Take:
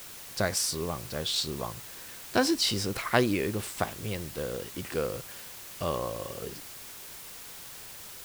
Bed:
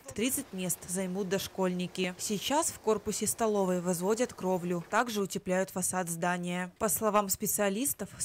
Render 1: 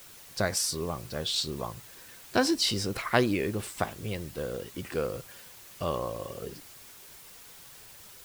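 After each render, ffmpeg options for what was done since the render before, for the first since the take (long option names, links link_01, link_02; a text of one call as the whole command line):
ffmpeg -i in.wav -af "afftdn=noise_reduction=6:noise_floor=-45" out.wav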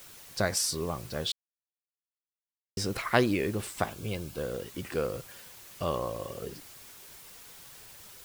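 ffmpeg -i in.wav -filter_complex "[0:a]asettb=1/sr,asplit=3[link_01][link_02][link_03];[link_01]atrim=end=3.904[link_04];[link_02]atrim=start=3.9:end=4.41,asetpts=PTS-STARTPTS,afade=type=in:duration=0.004:curve=qsin,afade=type=out:start_time=0.506:duration=0.004:curve=qsin,asuperstop=centerf=1900:order=12:qfactor=6.8[link_05];[link_03]atrim=start=4.406[link_06];[link_04][link_05]acrossfade=duration=0.004:curve1=hsin:curve2=qsin[link_07];[link_07][link_06]acrossfade=duration=0.004:curve1=qsin:curve2=hsin,asplit=3[link_08][link_09][link_10];[link_08]atrim=end=1.32,asetpts=PTS-STARTPTS,afade=type=out:start_time=1.316:duration=0.004:curve=hsin[link_11];[link_09]atrim=start=1.32:end=2.77,asetpts=PTS-STARTPTS,volume=0[link_12];[link_10]atrim=start=2.77,asetpts=PTS-STARTPTS,afade=type=in:duration=0.004:curve=hsin[link_13];[link_11][link_12][link_13]concat=n=3:v=0:a=1" out.wav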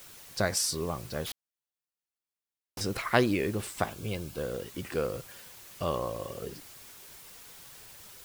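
ffmpeg -i in.wav -filter_complex "[0:a]asettb=1/sr,asplit=3[link_01][link_02][link_03];[link_01]atrim=end=1.234[link_04];[link_02]atrim=start=1.23:end=2.81,asetpts=PTS-STARTPTS,afade=type=in:duration=0.004:curve=qsin,afade=type=out:start_time=1.576:duration=0.004:curve=qsin,aeval=exprs='0.0237*(abs(mod(val(0)/0.0237+3,4)-2)-1)':channel_layout=same[link_05];[link_03]atrim=start=2.806[link_06];[link_04][link_05]acrossfade=duration=0.004:curve1=hsin:curve2=qsin[link_07];[link_07][link_06]acrossfade=duration=0.004:curve1=qsin:curve2=hsin" out.wav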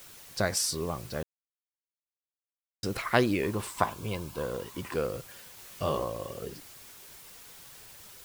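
ffmpeg -i in.wav -filter_complex "[0:a]asettb=1/sr,asplit=3[link_01][link_02][link_03];[link_01]atrim=end=3.434[link_04];[link_02]atrim=start=3.43:end=4.96,asetpts=PTS-STARTPTS,afade=type=in:duration=0.004:curve=qsin,afade=type=out:start_time=1.526:duration=0.004:curve=qsin,equalizer=frequency=1000:width=4.2:gain=14.5[link_05];[link_03]atrim=start=4.956[link_06];[link_04][link_05]acrossfade=duration=0.004:curve1=hsin:curve2=qsin[link_07];[link_07][link_06]acrossfade=duration=0.004:curve1=qsin:curve2=hsin,asettb=1/sr,asplit=3[link_08][link_09][link_10];[link_08]atrim=end=5.564[link_11];[link_09]atrim=start=5.56:end=6.04,asetpts=PTS-STARTPTS,afade=type=in:duration=0.004:curve=qsin,afade=type=out:start_time=0.476:duration=0.004:curve=qsin,asplit=2[link_12][link_13];[link_13]adelay=20,volume=-4dB[link_14];[link_12][link_14]amix=inputs=2:normalize=0,atrim=end_sample=21168[link_15];[link_10]atrim=start=6.036[link_16];[link_11][link_15]acrossfade=duration=0.004:curve1=hsin:curve2=qsin[link_17];[link_17][link_16]acrossfade=duration=0.004:curve1=qsin:curve2=hsin,asplit=3[link_18][link_19][link_20];[link_18]atrim=end=1.23,asetpts=PTS-STARTPTS,afade=type=out:start_time=1.226:duration=0.004:curve=hsin[link_21];[link_19]atrim=start=1.23:end=2.83,asetpts=PTS-STARTPTS,volume=0[link_22];[link_20]atrim=start=2.83,asetpts=PTS-STARTPTS,afade=type=in:duration=0.004:curve=hsin[link_23];[link_21][link_22][link_23]concat=n=3:v=0:a=1" out.wav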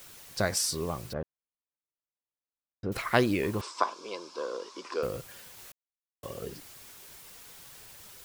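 ffmpeg -i in.wav -filter_complex "[0:a]asettb=1/sr,asplit=3[link_01][link_02][link_03];[link_01]atrim=end=1.134[link_04];[link_02]atrim=start=1.13:end=2.92,asetpts=PTS-STARTPTS,afade=type=in:duration=0.004:curve=qsin,afade=type=out:start_time=1.786:duration=0.004:curve=qsin,lowpass=1300[link_05];[link_03]atrim=start=2.916[link_06];[link_04][link_05]acrossfade=duration=0.004:curve1=hsin:curve2=qsin[link_07];[link_07][link_06]acrossfade=duration=0.004:curve1=qsin:curve2=hsin,asettb=1/sr,asplit=3[link_08][link_09][link_10];[link_08]atrim=end=3.614[link_11];[link_09]atrim=start=3.61:end=5.03,asetpts=PTS-STARTPTS,afade=type=in:duration=0.004:curve=qsin,afade=type=out:start_time=1.416:duration=0.004:curve=qsin,highpass=frequency=330:width=0.5412,highpass=frequency=330:width=1.3066,equalizer=frequency=760:width_type=q:width=4:gain=-6,equalizer=frequency=1100:width_type=q:width=4:gain=4,equalizer=frequency=1900:width_type=q:width=4:gain=-8,equalizer=frequency=2900:width_type=q:width=4:gain=-4,equalizer=frequency=5200:width_type=q:width=4:gain=9,lowpass=frequency=6700:width=0.5412,lowpass=frequency=6700:width=1.3066[link_12];[link_10]atrim=start=5.026[link_13];[link_11][link_12]acrossfade=duration=0.004:curve1=hsin:curve2=qsin[link_14];[link_14][link_13]acrossfade=duration=0.004:curve1=qsin:curve2=hsin,asplit=3[link_15][link_16][link_17];[link_15]atrim=end=5.72,asetpts=PTS-STARTPTS,afade=type=out:start_time=5.716:duration=0.004:curve=hsin[link_18];[link_16]atrim=start=5.72:end=6.23,asetpts=PTS-STARTPTS,volume=0[link_19];[link_17]atrim=start=6.23,asetpts=PTS-STARTPTS,afade=type=in:duration=0.004:curve=hsin[link_20];[link_18][link_19][link_20]concat=n=3:v=0:a=1" out.wav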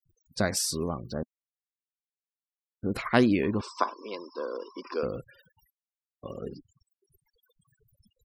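ffmpeg -i in.wav -af "afftfilt=real='re*gte(hypot(re,im),0.00708)':imag='im*gte(hypot(re,im),0.00708)':win_size=1024:overlap=0.75,equalizer=frequency=240:width=2:gain=8" out.wav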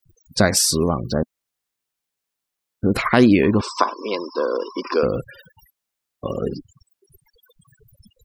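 ffmpeg -i in.wav -filter_complex "[0:a]asplit=2[link_01][link_02];[link_02]acompressor=threshold=-32dB:ratio=6,volume=-2dB[link_03];[link_01][link_03]amix=inputs=2:normalize=0,alimiter=level_in=8.5dB:limit=-1dB:release=50:level=0:latency=1" out.wav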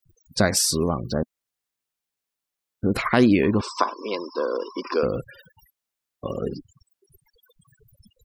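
ffmpeg -i in.wav -af "volume=-3.5dB" out.wav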